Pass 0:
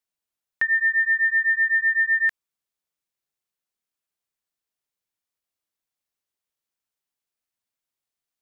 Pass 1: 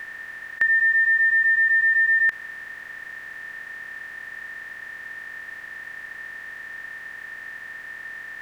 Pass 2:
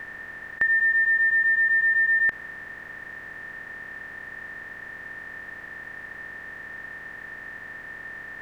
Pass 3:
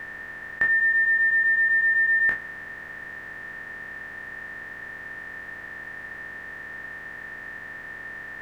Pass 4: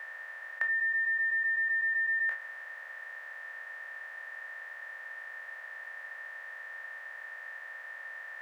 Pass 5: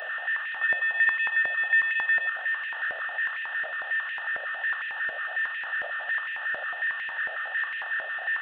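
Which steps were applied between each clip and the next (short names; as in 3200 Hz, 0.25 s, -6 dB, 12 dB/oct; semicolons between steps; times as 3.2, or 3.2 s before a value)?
per-bin compression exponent 0.2
tilt shelf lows +7 dB, about 1300 Hz
spectral trails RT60 0.34 s
elliptic high-pass 540 Hz, stop band 50 dB; compressor, threshold -22 dBFS, peak gain reduction 4.5 dB; gain -5.5 dB
delta modulation 16 kbps, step -28 dBFS; fixed phaser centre 1500 Hz, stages 8; stepped high-pass 11 Hz 630–2200 Hz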